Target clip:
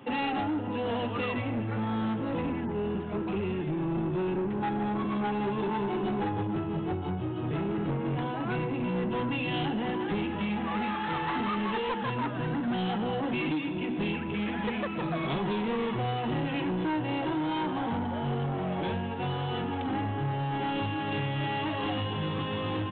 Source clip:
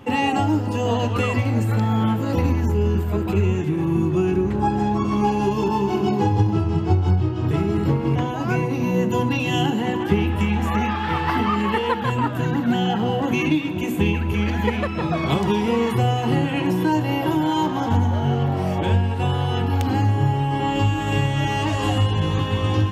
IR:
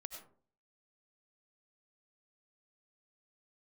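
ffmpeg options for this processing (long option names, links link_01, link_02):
-af "highpass=frequency=130:width=0.5412,highpass=frequency=130:width=1.3066,aresample=8000,asoftclip=type=tanh:threshold=-21.5dB,aresample=44100,volume=-4.5dB"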